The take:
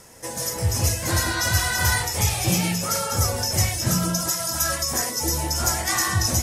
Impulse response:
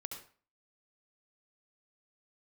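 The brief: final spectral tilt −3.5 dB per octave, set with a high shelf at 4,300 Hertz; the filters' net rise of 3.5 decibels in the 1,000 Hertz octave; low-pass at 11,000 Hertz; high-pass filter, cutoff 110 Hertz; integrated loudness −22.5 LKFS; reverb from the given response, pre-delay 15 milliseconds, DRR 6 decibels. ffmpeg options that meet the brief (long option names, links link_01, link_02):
-filter_complex "[0:a]highpass=110,lowpass=11000,equalizer=frequency=1000:width_type=o:gain=5,highshelf=frequency=4300:gain=-9,asplit=2[link_01][link_02];[1:a]atrim=start_sample=2205,adelay=15[link_03];[link_02][link_03]afir=irnorm=-1:irlink=0,volume=-4dB[link_04];[link_01][link_04]amix=inputs=2:normalize=0,volume=1.5dB"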